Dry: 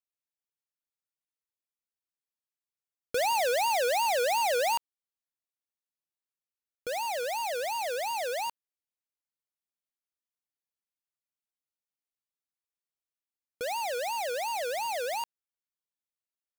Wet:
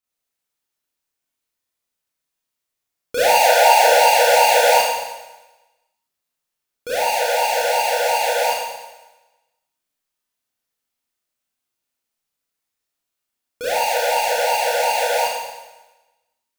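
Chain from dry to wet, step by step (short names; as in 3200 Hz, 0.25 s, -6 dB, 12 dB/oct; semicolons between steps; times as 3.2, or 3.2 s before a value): 3.39–3.84 resonant low shelf 440 Hz -13.5 dB, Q 1.5; Schroeder reverb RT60 1.1 s, combs from 25 ms, DRR -9 dB; gain +4 dB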